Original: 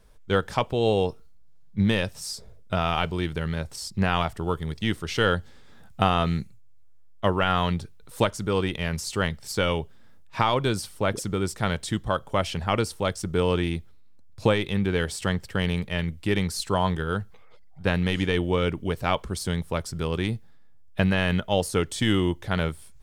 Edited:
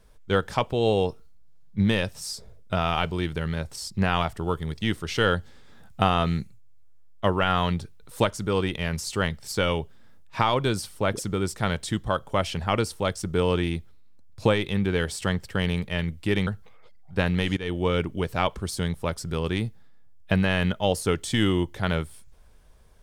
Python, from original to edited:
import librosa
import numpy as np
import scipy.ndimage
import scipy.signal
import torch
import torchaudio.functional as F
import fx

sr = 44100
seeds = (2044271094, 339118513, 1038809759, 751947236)

y = fx.edit(x, sr, fx.cut(start_s=16.47, length_s=0.68),
    fx.fade_in_from(start_s=18.25, length_s=0.37, curve='qsin', floor_db=-16.0), tone=tone)